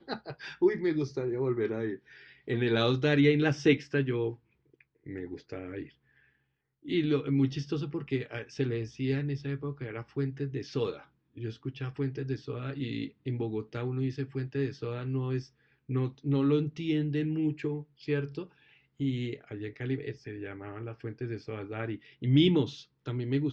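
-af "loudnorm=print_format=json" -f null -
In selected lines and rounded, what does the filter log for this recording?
"input_i" : "-31.5",
"input_tp" : "-11.8",
"input_lra" : "8.0",
"input_thresh" : "-42.0",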